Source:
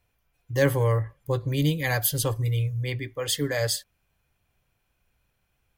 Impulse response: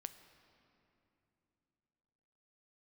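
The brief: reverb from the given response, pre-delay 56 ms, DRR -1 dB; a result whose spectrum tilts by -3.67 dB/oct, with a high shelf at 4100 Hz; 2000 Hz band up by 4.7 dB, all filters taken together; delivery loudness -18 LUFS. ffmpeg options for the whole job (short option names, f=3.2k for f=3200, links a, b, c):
-filter_complex "[0:a]equalizer=f=2k:t=o:g=4.5,highshelf=f=4.1k:g=5,asplit=2[a][b];[1:a]atrim=start_sample=2205,adelay=56[c];[b][c]afir=irnorm=-1:irlink=0,volume=5dB[d];[a][d]amix=inputs=2:normalize=0,volume=3dB"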